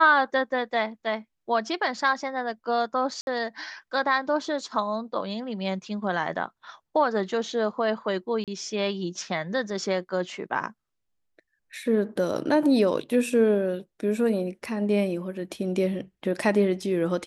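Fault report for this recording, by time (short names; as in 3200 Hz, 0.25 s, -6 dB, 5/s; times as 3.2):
3.21–3.27 gap 61 ms
8.44–8.48 gap 37 ms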